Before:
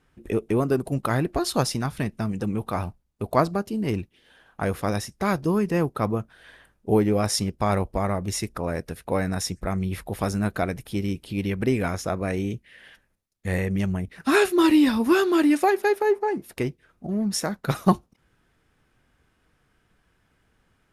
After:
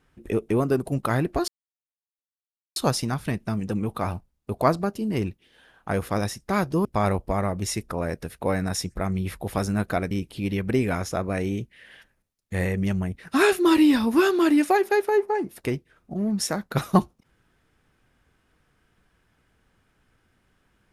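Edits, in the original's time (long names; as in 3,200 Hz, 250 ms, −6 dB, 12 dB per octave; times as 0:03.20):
0:01.48: splice in silence 1.28 s
0:05.57–0:07.51: remove
0:10.77–0:11.04: remove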